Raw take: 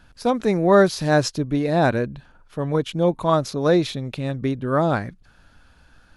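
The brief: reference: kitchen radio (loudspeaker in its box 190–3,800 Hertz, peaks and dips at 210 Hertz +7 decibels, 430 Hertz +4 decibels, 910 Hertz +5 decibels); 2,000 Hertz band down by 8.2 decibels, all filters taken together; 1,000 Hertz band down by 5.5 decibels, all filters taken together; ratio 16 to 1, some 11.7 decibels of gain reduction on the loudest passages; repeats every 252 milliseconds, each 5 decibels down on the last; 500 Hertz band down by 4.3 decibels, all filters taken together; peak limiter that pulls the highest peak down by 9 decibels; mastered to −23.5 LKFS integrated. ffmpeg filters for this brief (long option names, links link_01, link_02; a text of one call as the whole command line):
ffmpeg -i in.wav -af "equalizer=frequency=500:width_type=o:gain=-6,equalizer=frequency=1000:width_type=o:gain=-6,equalizer=frequency=2000:width_type=o:gain=-8.5,acompressor=threshold=-27dB:ratio=16,alimiter=level_in=4dB:limit=-24dB:level=0:latency=1,volume=-4dB,highpass=190,equalizer=frequency=210:width_type=q:width=4:gain=7,equalizer=frequency=430:width_type=q:width=4:gain=4,equalizer=frequency=910:width_type=q:width=4:gain=5,lowpass=frequency=3800:width=0.5412,lowpass=frequency=3800:width=1.3066,aecho=1:1:252|504|756|1008|1260|1512|1764:0.562|0.315|0.176|0.0988|0.0553|0.031|0.0173,volume=13dB" out.wav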